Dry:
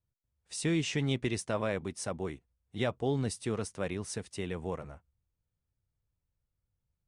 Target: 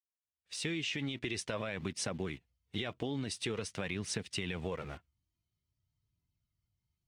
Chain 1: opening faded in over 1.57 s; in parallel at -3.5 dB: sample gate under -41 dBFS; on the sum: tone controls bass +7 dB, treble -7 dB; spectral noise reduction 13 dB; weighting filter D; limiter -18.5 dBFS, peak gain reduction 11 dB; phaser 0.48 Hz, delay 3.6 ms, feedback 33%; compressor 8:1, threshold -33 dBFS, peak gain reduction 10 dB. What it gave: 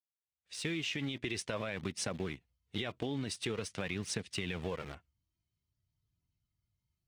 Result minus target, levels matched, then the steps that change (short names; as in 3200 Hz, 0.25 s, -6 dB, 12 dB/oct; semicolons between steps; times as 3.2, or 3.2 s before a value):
sample gate: distortion +11 dB
change: sample gate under -50 dBFS